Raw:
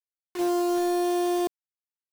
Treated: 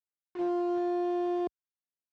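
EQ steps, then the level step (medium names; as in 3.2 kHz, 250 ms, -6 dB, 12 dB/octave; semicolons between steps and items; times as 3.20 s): high-pass 51 Hz; tape spacing loss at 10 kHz 35 dB; -3.5 dB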